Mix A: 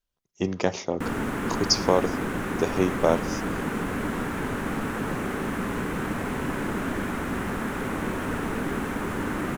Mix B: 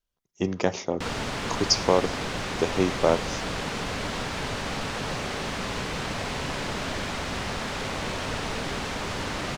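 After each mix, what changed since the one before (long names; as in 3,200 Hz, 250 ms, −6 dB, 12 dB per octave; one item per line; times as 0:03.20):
background: remove drawn EQ curve 130 Hz 0 dB, 210 Hz +7 dB, 330 Hz +8 dB, 610 Hz −3 dB, 1,500 Hz +3 dB, 4,700 Hz −16 dB, 13,000 Hz +9 dB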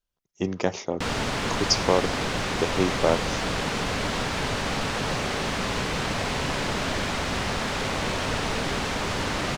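speech: send −8.0 dB
background +3.5 dB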